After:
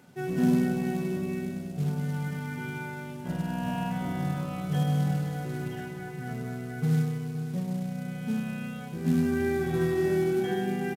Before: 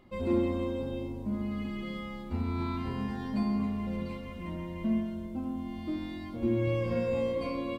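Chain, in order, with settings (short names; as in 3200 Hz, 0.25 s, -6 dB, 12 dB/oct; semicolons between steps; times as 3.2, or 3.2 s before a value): HPF 160 Hz 24 dB/oct; high shelf 3700 Hz +3.5 dB; companded quantiser 6-bit; varispeed -29%; on a send: echo 0.521 s -14 dB; on the sum: gain +4 dB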